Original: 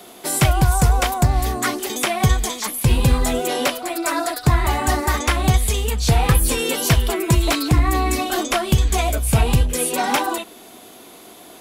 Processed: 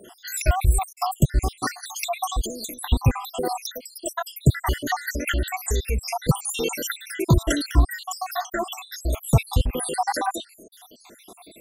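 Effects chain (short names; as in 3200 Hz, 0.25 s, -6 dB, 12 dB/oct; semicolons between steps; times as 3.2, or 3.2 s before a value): random spectral dropouts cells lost 77%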